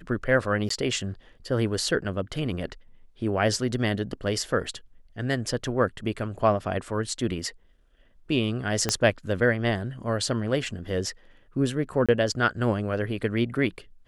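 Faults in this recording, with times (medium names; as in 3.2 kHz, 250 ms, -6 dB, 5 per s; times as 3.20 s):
0.69–0.70 s: dropout 14 ms
8.89 s: pop -8 dBFS
12.06–12.09 s: dropout 26 ms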